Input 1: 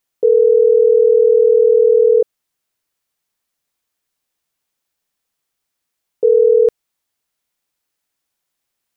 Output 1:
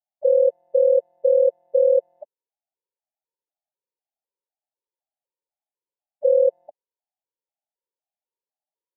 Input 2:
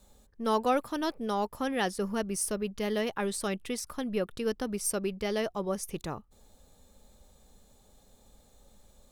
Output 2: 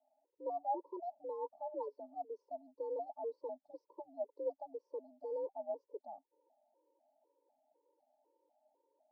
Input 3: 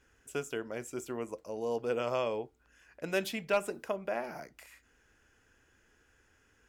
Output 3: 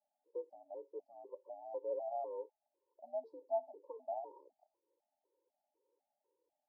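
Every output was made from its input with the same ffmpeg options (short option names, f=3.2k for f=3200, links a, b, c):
-af "asuperstop=centerf=2000:order=20:qfactor=0.58,highpass=f=330:t=q:w=0.5412,highpass=f=330:t=q:w=1.307,lowpass=f=2.6k:t=q:w=0.5176,lowpass=f=2.6k:t=q:w=0.7071,lowpass=f=2.6k:t=q:w=1.932,afreqshift=64,afftfilt=real='re*gt(sin(2*PI*2*pts/sr)*(1-2*mod(floor(b*sr/1024/290),2)),0)':imag='im*gt(sin(2*PI*2*pts/sr)*(1-2*mod(floor(b*sr/1024/290),2)),0)':win_size=1024:overlap=0.75,volume=-5dB"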